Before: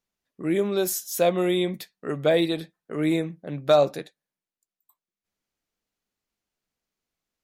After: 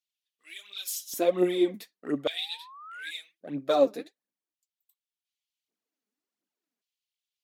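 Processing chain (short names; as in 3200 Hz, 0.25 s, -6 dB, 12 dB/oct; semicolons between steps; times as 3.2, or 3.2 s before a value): phaser 1.4 Hz, delay 5 ms, feedback 63%; painted sound rise, 2.28–3.11, 650–1700 Hz -22 dBFS; LFO high-pass square 0.44 Hz 270–3100 Hz; gain -8.5 dB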